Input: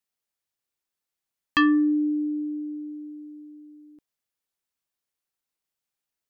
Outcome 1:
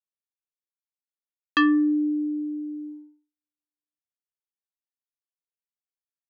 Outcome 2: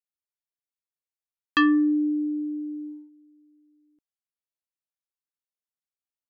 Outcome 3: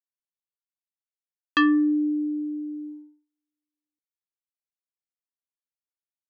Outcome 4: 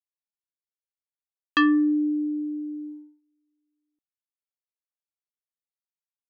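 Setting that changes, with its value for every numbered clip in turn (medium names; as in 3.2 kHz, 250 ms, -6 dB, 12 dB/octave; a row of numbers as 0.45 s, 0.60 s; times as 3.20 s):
gate, range: -58 dB, -15 dB, -45 dB, -31 dB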